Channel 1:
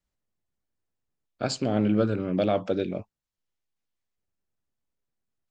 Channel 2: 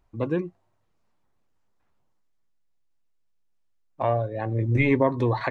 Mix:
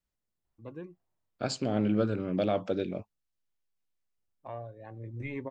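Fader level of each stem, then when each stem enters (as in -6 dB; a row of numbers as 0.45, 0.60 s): -4.0, -17.0 dB; 0.00, 0.45 s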